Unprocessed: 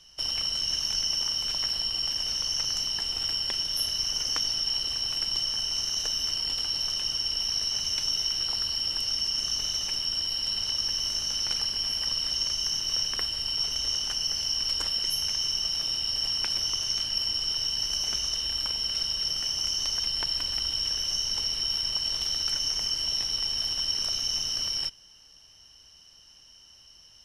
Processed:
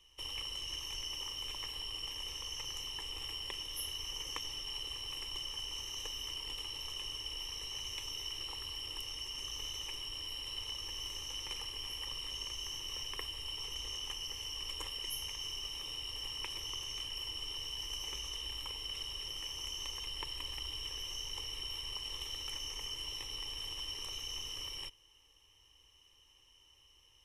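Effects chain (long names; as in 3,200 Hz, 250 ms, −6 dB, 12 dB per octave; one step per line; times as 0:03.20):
phaser with its sweep stopped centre 1,000 Hz, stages 8
level −4 dB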